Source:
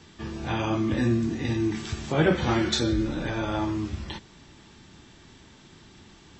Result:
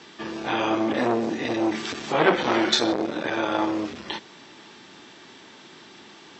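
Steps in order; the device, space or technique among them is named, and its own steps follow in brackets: public-address speaker with an overloaded transformer (transformer saturation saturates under 990 Hz; band-pass 320–5700 Hz); trim +8 dB

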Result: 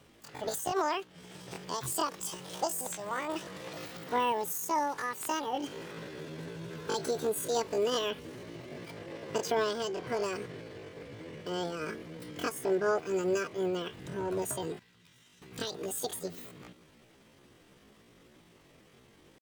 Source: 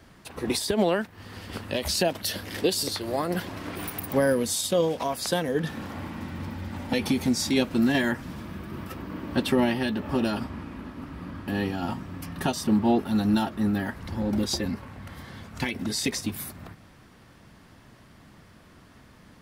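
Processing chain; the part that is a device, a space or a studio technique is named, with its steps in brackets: chipmunk voice (pitch shift +10 st); 14.79–15.42 s: amplifier tone stack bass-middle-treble 5-5-5; trim -7 dB

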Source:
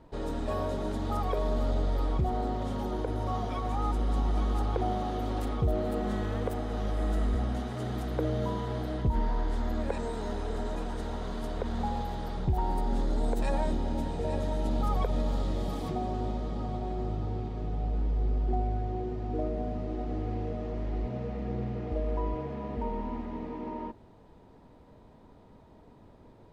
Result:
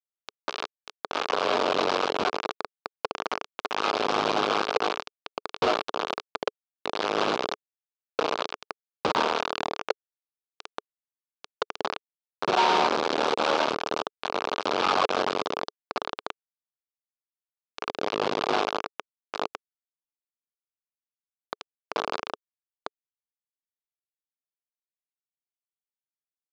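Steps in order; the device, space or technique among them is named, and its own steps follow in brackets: 12.40–12.87 s: comb 5.4 ms, depth 86%; hand-held game console (bit crusher 4-bit; cabinet simulation 420–4800 Hz, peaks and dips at 430 Hz +4 dB, 1.2 kHz +3 dB, 1.9 kHz -9 dB); trim +5 dB

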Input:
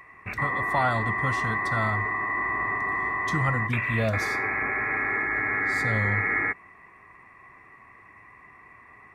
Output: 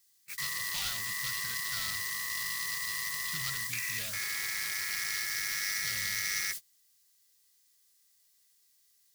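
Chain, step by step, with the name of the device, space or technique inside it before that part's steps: aircraft radio (band-pass 330–2300 Hz; hard clipper -25.5 dBFS, distortion -13 dB; mains buzz 400 Hz, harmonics 5, -47 dBFS -5 dB/octave; white noise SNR 16 dB; gate -35 dBFS, range -29 dB); FFT filter 170 Hz 0 dB, 260 Hz -20 dB, 360 Hz -19 dB, 740 Hz -22 dB, 4.6 kHz +12 dB; trim -3 dB

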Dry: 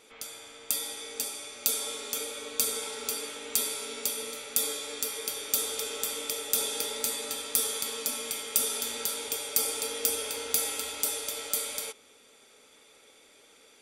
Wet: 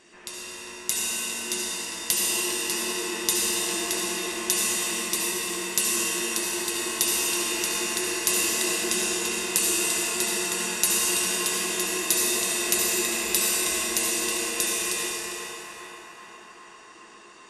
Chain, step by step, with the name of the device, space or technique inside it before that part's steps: band-passed feedback delay 318 ms, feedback 80%, band-pass 1.4 kHz, level -4 dB; slowed and reverbed (tape speed -21%; reverberation RT60 3.0 s, pre-delay 61 ms, DRR -2.5 dB); trim +1.5 dB

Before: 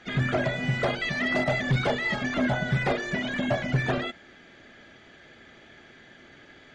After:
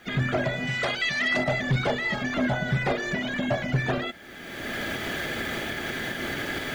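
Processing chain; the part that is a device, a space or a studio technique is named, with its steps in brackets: 0.67–1.37 s: tilt shelf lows -6.5 dB, about 1.1 kHz; cheap recorder with automatic gain (white noise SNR 39 dB; recorder AGC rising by 29 dB/s)

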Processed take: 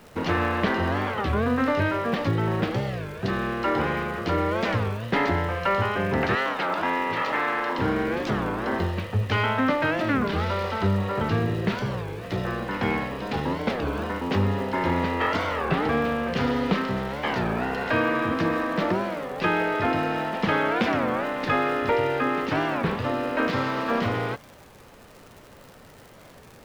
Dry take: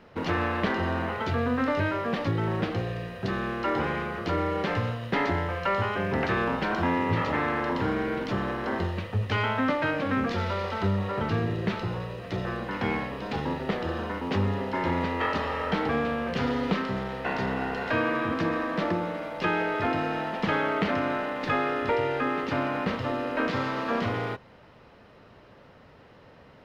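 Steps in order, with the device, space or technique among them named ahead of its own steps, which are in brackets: 6.35–7.78 s: frequency weighting A; warped LP (warped record 33 1/3 rpm, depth 250 cents; crackle 140 per s -41 dBFS; pink noise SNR 32 dB); trim +3 dB

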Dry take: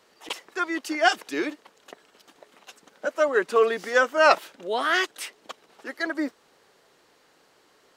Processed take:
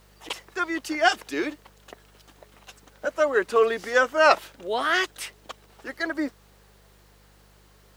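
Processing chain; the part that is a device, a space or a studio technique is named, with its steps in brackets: video cassette with head-switching buzz (mains buzz 50 Hz, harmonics 4, -58 dBFS -5 dB/octave; white noise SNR 39 dB)

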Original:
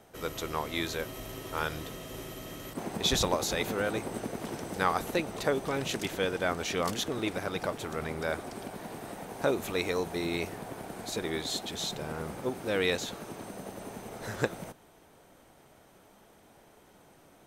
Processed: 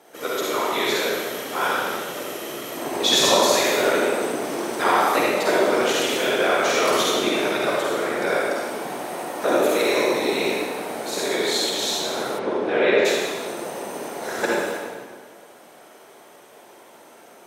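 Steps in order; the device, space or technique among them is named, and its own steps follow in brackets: whispering ghost (whisper effect; high-pass 330 Hz 12 dB/octave; reverberation RT60 1.6 s, pre-delay 43 ms, DRR -6 dB); 12.38–13.04 s: low-pass 3.9 kHz -> 2.2 kHz 12 dB/octave; trim +5.5 dB

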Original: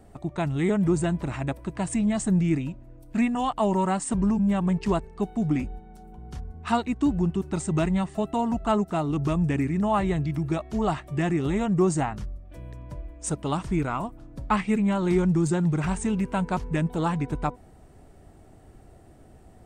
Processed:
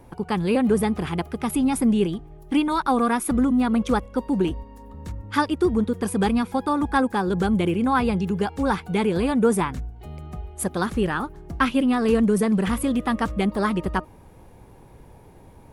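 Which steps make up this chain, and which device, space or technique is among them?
nightcore (tape speed +25%); trim +3 dB

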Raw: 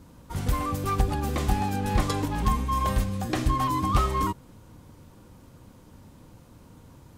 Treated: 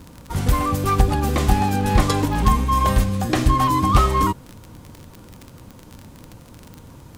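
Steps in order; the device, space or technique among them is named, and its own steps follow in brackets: vinyl LP (crackle 33 per s -34 dBFS; pink noise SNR 42 dB); trim +7.5 dB

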